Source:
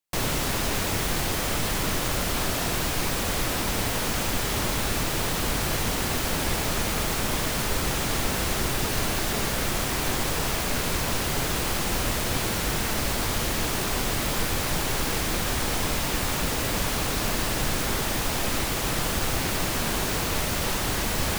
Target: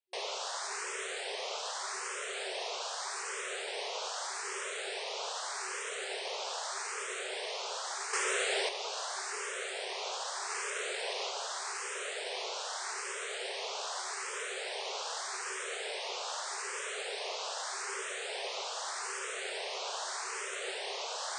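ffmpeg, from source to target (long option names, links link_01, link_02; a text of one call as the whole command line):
ffmpeg -i in.wav -filter_complex "[0:a]asettb=1/sr,asplit=3[link_01][link_02][link_03];[link_01]atrim=end=8.134[link_04];[link_02]atrim=start=8.13:end=8.69,asetpts=PTS-STARTPTS,afade=type=in:duration=0.004:curve=qsin,afade=type=out:start_time=0.556:duration=0.004:curve=qsin,acontrast=82[link_05];[link_03]atrim=start=8.686[link_06];[link_04][link_05]acrossfade=duration=0.004:curve1=hsin:curve2=qsin[link_07];[link_07][link_06]acrossfade=duration=0.004:curve1=qsin:curve2=hsin,asettb=1/sr,asplit=3[link_08][link_09][link_10];[link_08]atrim=end=10.504[link_11];[link_09]atrim=start=10.5:end=11.3,asetpts=PTS-STARTPTS,afade=type=in:duration=0.004:curve=qsin,afade=type=out:start_time=0.796:duration=0.004:curve=qsin,aeval=exprs='0.224*(cos(1*acos(clip(val(0)/0.224,-1,1)))-cos(1*PI/2))+0.02*(cos(5*acos(clip(val(0)/0.224,-1,1)))-cos(5*PI/2))':channel_layout=same[link_12];[link_10]atrim=start=11.296[link_13];[link_11][link_12]acrossfade=duration=0.004:curve1=hsin:curve2=qsin[link_14];[link_14][link_13]acrossfade=duration=0.004:curve1=qsin:curve2=hsin,afftfilt=real='re*between(b*sr/4096,370,9200)':imag='im*between(b*sr/4096,370,9200)':win_size=4096:overlap=0.75,asplit=2[link_15][link_16];[link_16]afreqshift=0.82[link_17];[link_15][link_17]amix=inputs=2:normalize=1,volume=-6dB" out.wav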